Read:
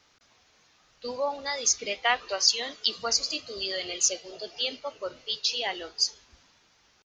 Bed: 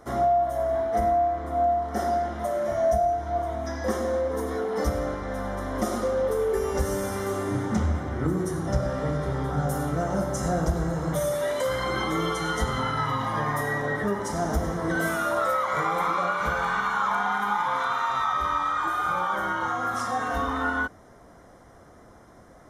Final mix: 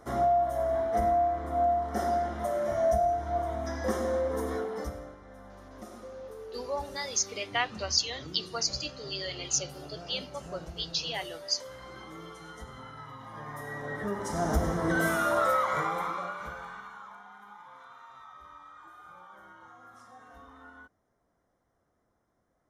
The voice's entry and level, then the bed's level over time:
5.50 s, -4.5 dB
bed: 4.55 s -3 dB
5.16 s -18.5 dB
13.18 s -18.5 dB
14.53 s -1 dB
15.6 s -1 dB
17.23 s -24.5 dB

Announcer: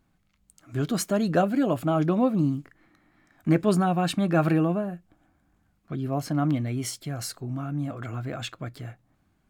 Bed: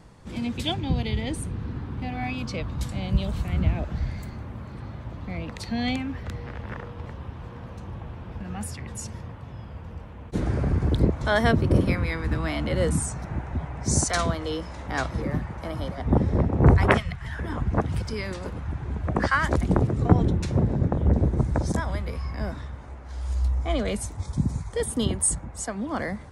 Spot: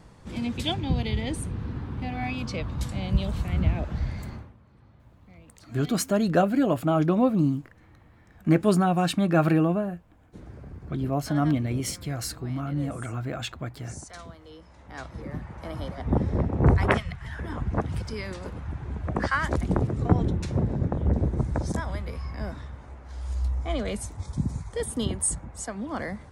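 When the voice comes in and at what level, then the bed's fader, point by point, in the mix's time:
5.00 s, +1.0 dB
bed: 4.35 s -0.5 dB
4.57 s -18.5 dB
14.43 s -18.5 dB
15.74 s -3 dB

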